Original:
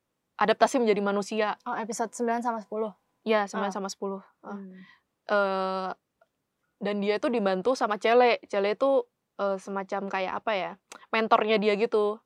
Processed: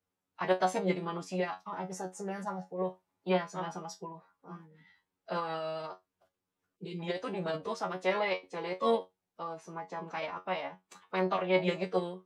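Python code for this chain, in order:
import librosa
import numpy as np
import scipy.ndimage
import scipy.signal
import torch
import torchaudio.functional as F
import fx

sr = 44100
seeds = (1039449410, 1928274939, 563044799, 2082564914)

y = fx.comb_fb(x, sr, f0_hz=110.0, decay_s=0.18, harmonics='all', damping=0.0, mix_pct=100)
y = fx.pitch_keep_formants(y, sr, semitones=-3.0)
y = fx.spec_box(y, sr, start_s=6.76, length_s=0.24, low_hz=510.0, high_hz=2100.0, gain_db=-22)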